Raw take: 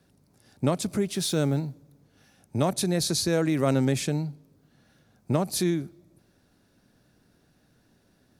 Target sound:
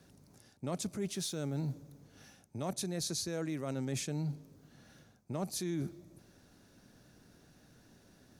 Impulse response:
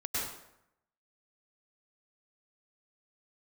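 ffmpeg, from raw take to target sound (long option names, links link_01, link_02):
-af "equalizer=frequency=6300:width=3.1:gain=5,areverse,acompressor=threshold=-35dB:ratio=16,areverse,volume=2dB"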